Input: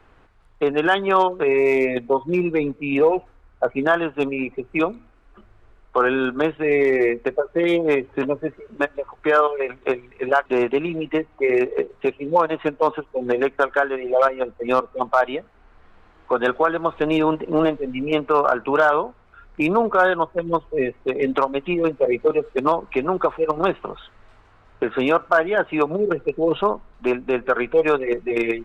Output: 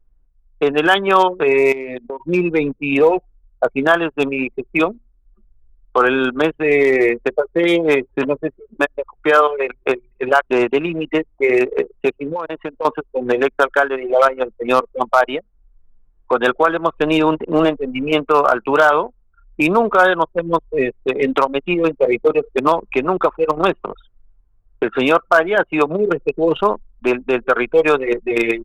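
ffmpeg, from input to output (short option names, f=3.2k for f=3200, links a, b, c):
-filter_complex "[0:a]asettb=1/sr,asplit=3[a][b][c];[a]atrim=end=1.724[d];[b]atrim=start=1.72:end=2.2,asetpts=PTS-STARTPTS,afade=t=in:d=0.004:c=qsin,afade=t=out:st=0.476:d=0.004:c=qsin,acompressor=threshold=-26dB:ratio=12:attack=3.2:release=140:knee=1:detection=peak[e];[c]atrim=start=2.196[f];[d][e]acrossfade=d=0.004:c1=hsin:c2=qsin[g];[g][f]acrossfade=d=0.004:c1=qsin:c2=hsin,asettb=1/sr,asplit=3[h][i][j];[h]atrim=end=12.314[k];[i]atrim=start=12.31:end=12.85,asetpts=PTS-STARTPTS,afade=t=in:d=0.004:c=qsin,afade=t=out:st=0.536:d=0.004:c=qsin,acompressor=threshold=-24dB:ratio=6:attack=3.2:release=140:knee=1:detection=peak[l];[j]atrim=start=12.846[m];[k][l]acrossfade=d=0.004:c1=hsin:c2=qsin[n];[n][m]acrossfade=d=0.004:c1=qsin:c2=hsin,anlmdn=25.1,highshelf=f=3.5k:g=10,volume=3.5dB"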